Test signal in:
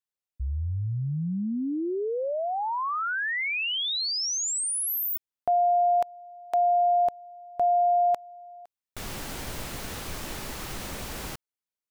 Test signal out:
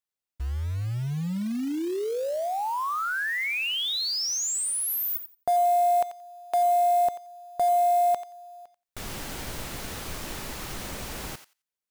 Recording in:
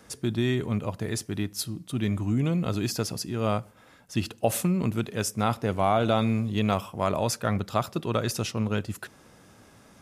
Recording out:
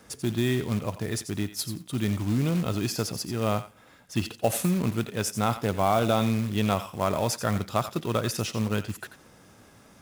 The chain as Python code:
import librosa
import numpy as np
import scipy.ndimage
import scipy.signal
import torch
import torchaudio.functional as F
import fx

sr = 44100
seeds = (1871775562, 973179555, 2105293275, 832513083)

y = fx.echo_thinned(x, sr, ms=88, feedback_pct=15, hz=1200.0, wet_db=-10.0)
y = fx.quant_float(y, sr, bits=2)